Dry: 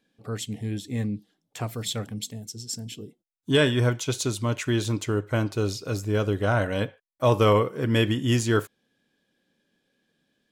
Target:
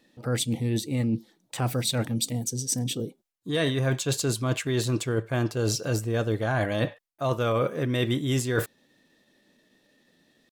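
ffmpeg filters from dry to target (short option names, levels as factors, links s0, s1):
-af "areverse,acompressor=threshold=0.0282:ratio=10,areverse,asetrate=48091,aresample=44100,atempo=0.917004,volume=2.66"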